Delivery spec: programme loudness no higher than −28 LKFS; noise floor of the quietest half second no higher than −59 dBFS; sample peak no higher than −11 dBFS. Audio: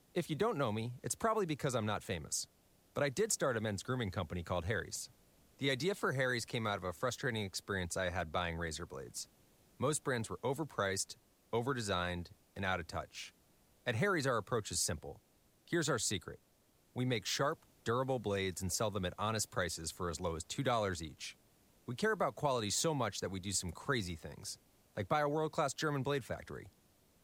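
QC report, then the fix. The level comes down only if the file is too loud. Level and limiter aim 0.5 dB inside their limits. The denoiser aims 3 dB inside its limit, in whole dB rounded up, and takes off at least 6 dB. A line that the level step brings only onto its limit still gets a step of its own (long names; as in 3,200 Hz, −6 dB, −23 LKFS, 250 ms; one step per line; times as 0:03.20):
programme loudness −37.5 LKFS: in spec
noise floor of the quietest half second −71 dBFS: in spec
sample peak −19.5 dBFS: in spec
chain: no processing needed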